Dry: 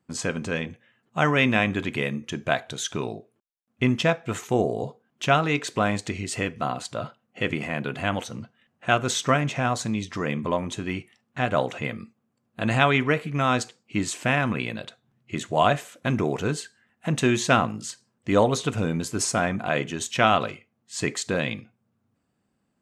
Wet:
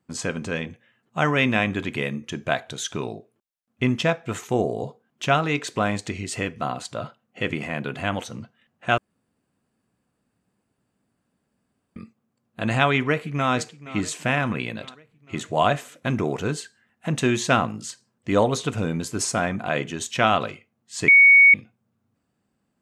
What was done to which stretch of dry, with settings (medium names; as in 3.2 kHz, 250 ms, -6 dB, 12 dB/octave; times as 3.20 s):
8.98–11.96 s: room tone
12.92–13.53 s: echo throw 470 ms, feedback 60%, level -16.5 dB
21.08–21.54 s: bleep 2.23 kHz -8.5 dBFS